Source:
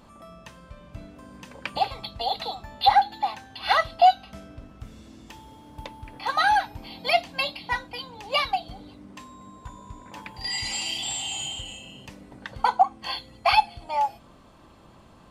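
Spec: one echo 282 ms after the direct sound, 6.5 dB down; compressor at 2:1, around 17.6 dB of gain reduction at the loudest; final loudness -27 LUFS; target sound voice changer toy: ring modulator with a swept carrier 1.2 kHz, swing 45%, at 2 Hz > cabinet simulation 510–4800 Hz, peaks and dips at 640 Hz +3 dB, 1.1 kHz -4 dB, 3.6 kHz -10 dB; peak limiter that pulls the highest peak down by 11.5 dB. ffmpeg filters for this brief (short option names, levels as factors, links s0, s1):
-af "acompressor=threshold=0.00501:ratio=2,alimiter=level_in=2.99:limit=0.0631:level=0:latency=1,volume=0.335,aecho=1:1:282:0.473,aeval=exprs='val(0)*sin(2*PI*1200*n/s+1200*0.45/2*sin(2*PI*2*n/s))':c=same,highpass=510,equalizer=f=640:t=q:w=4:g=3,equalizer=f=1100:t=q:w=4:g=-4,equalizer=f=3600:t=q:w=4:g=-10,lowpass=f=4800:w=0.5412,lowpass=f=4800:w=1.3066,volume=11.9"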